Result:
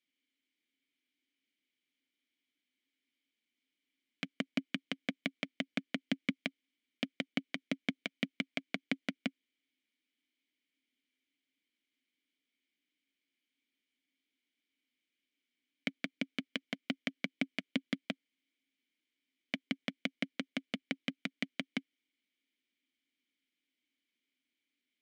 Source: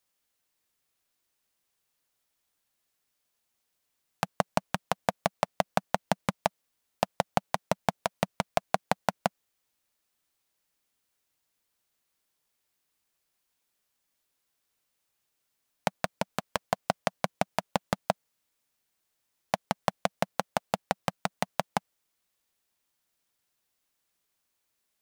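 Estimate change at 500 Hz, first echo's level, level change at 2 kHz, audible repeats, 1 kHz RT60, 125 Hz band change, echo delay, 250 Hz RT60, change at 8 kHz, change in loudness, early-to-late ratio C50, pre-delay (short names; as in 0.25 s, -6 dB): -16.0 dB, none, -2.5 dB, none, none, -11.0 dB, none, none, -16.0 dB, -7.5 dB, none, none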